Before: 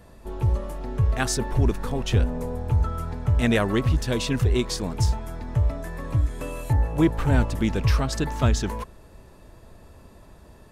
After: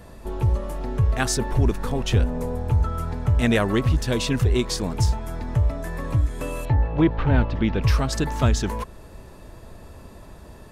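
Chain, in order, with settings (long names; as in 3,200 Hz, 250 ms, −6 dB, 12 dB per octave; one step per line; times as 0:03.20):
0:06.65–0:07.82: low-pass filter 4,000 Hz 24 dB per octave
in parallel at −1 dB: downward compressor, threshold −34 dBFS, peak gain reduction 18.5 dB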